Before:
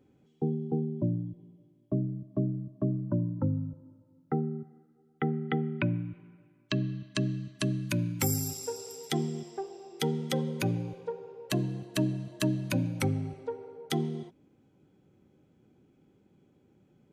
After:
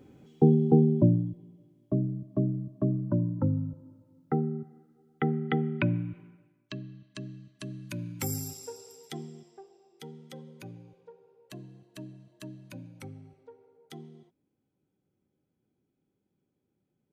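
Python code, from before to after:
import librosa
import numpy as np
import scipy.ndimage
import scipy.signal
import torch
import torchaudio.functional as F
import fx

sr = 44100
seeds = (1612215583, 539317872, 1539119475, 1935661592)

y = fx.gain(x, sr, db=fx.line((0.93, 10.0), (1.42, 2.0), (6.21, 2.0), (6.82, -11.0), (7.59, -11.0), (8.36, -3.5), (9.94, -15.5)))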